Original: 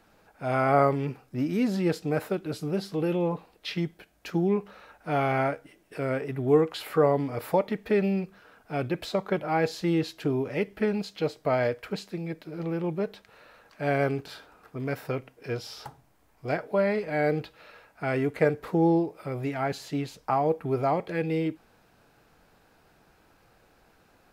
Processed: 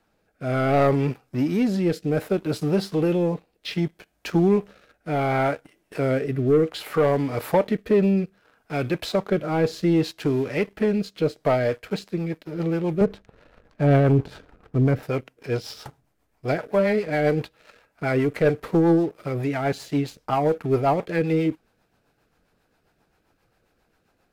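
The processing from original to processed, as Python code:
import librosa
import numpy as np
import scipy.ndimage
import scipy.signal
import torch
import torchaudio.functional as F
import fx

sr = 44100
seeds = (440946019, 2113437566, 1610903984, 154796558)

y = fx.tilt_eq(x, sr, slope=-3.5, at=(13.01, 15.03))
y = fx.leveller(y, sr, passes=2)
y = fx.rotary_switch(y, sr, hz=0.65, then_hz=7.5, switch_at_s=11.17)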